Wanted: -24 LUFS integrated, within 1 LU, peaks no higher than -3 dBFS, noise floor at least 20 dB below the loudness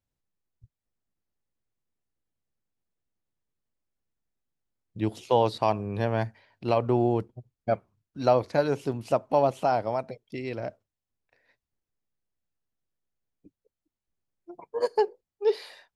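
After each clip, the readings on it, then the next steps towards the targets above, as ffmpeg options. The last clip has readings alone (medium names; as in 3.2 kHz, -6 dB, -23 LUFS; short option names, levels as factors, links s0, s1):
loudness -27.5 LUFS; peak level -9.5 dBFS; loudness target -24.0 LUFS
-> -af "volume=1.5"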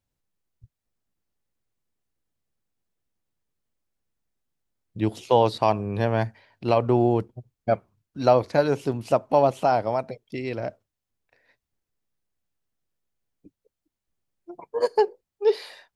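loudness -24.0 LUFS; peak level -6.0 dBFS; noise floor -86 dBFS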